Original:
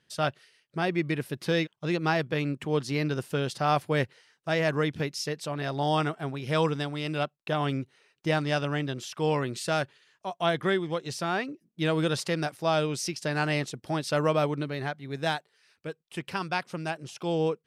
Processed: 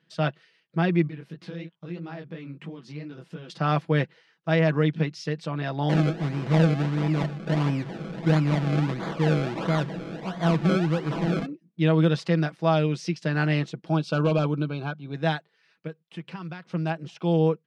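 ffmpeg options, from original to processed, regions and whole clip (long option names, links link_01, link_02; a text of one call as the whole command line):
ffmpeg -i in.wav -filter_complex "[0:a]asettb=1/sr,asplit=3[link_01][link_02][link_03];[link_01]atrim=end=1.074[link_04];[link_02]atrim=start=1.07:end=3.5,asetpts=PTS-STARTPTS,afade=type=in:duration=0.004:curve=qsin,afade=type=out:start_time=2.426:duration=0.004:curve=qsin,acompressor=threshold=-37dB:ratio=4:attack=3.2:release=140:knee=1:detection=peak,flanger=delay=16:depth=7.2:speed=3[link_05];[link_03]atrim=start=3.496[link_06];[link_04][link_05]acrossfade=duration=0.004:curve1=hsin:curve2=qsin[link_07];[link_07][link_06]acrossfade=duration=0.004:curve1=qsin:curve2=hsin,asettb=1/sr,asplit=3[link_08][link_09][link_10];[link_08]atrim=end=5.894[link_11];[link_09]atrim=start=5.89:end=11.46,asetpts=PTS-STARTPTS,afade=type=in:duration=0.004:curve=qsin,afade=type=out:start_time=5.566:duration=0.004:curve=qsin,aeval=exprs='val(0)+0.5*0.0299*sgn(val(0))':channel_layout=same,equalizer=frequency=790:width_type=o:width=1.4:gain=-6.5,acrusher=samples=32:mix=1:aa=0.000001:lfo=1:lforange=32:lforate=1.5[link_12];[link_10]atrim=start=11.456[link_13];[link_11][link_12]acrossfade=duration=0.004:curve1=hsin:curve2=qsin[link_14];[link_14][link_13]acrossfade=duration=0.004:curve1=qsin:curve2=hsin,asettb=1/sr,asplit=3[link_15][link_16][link_17];[link_15]atrim=end=13.884[link_18];[link_16]atrim=start=13.88:end=15.14,asetpts=PTS-STARTPTS,afade=type=in:duration=0.004:curve=qsin,afade=type=out:start_time=1.256:duration=0.004:curve=qsin,aeval=exprs='0.106*(abs(mod(val(0)/0.106+3,4)-2)-1)':channel_layout=same,asuperstop=centerf=1900:order=8:qfactor=3.1[link_19];[link_17]atrim=start=15.136[link_20];[link_18][link_19]acrossfade=duration=0.004:curve1=hsin:curve2=qsin[link_21];[link_21][link_20]acrossfade=duration=0.004:curve1=qsin:curve2=hsin,asettb=1/sr,asplit=3[link_22][link_23][link_24];[link_22]atrim=end=15.874[link_25];[link_23]atrim=start=15.87:end=16.73,asetpts=PTS-STARTPTS,afade=type=in:duration=0.004:curve=qsin,afade=type=out:start_time=0.856:duration=0.004:curve=qsin,acompressor=threshold=-40dB:ratio=3:attack=3.2:release=140:knee=1:detection=peak,acrusher=bits=8:mode=log:mix=0:aa=0.000001[link_26];[link_24]atrim=start=16.726[link_27];[link_25][link_26]acrossfade=duration=0.004:curve1=hsin:curve2=qsin[link_28];[link_28][link_27]acrossfade=duration=0.004:curve1=qsin:curve2=hsin,lowpass=3800,lowshelf=frequency=120:width_type=q:width=3:gain=-11,aecho=1:1:6.1:0.47" out.wav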